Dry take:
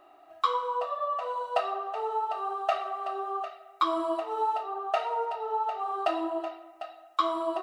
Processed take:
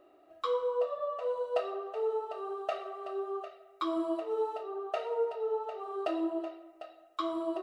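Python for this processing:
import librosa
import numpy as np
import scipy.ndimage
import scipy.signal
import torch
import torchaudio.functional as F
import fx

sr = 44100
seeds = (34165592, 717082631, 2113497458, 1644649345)

y = fx.low_shelf_res(x, sr, hz=640.0, db=6.5, q=3.0)
y = y * 10.0 ** (-7.0 / 20.0)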